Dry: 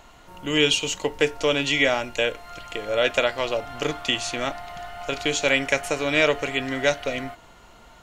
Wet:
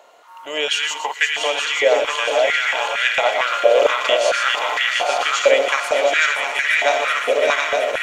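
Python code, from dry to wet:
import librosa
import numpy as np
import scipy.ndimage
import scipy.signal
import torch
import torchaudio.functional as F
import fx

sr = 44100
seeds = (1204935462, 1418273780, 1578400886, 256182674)

p1 = fx.reverse_delay_fb(x, sr, ms=360, feedback_pct=74, wet_db=-5)
p2 = fx.rider(p1, sr, range_db=4, speed_s=0.5)
p3 = p2 + fx.echo_multitap(p2, sr, ms=(120, 250, 867), db=(-11.0, -18.5, -5.0), dry=0)
y = fx.filter_held_highpass(p3, sr, hz=4.4, low_hz=530.0, high_hz=1800.0)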